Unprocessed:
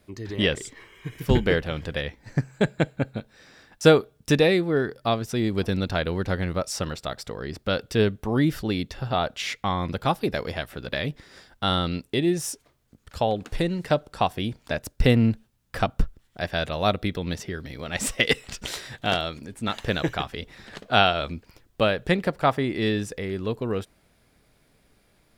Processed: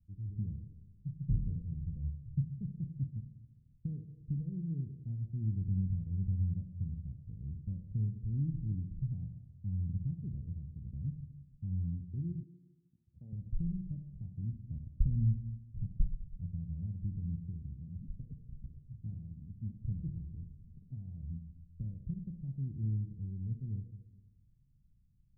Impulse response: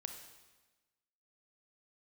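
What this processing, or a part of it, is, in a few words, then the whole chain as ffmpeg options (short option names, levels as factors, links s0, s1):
club heard from the street: -filter_complex "[0:a]alimiter=limit=0.2:level=0:latency=1:release=273,lowpass=f=150:w=0.5412,lowpass=f=150:w=1.3066[s0];[1:a]atrim=start_sample=2205[s1];[s0][s1]afir=irnorm=-1:irlink=0,asettb=1/sr,asplit=3[s2][s3][s4];[s2]atrim=end=12.434[s5];[s3]atrim=start=12.43:end=13.33,asetpts=PTS-STARTPTS,afade=t=in:d=0.004:c=qsin,afade=t=out:st=0.896:d=0.004:c=qsin,highpass=220[s6];[s4]atrim=start=13.326[s7];[s5][s6]acrossfade=d=0.004:c1=hsin:c2=qsin[s8];[s8][s7]acrossfade=d=0.004:c1=qsin:c2=hsin,volume=1.12"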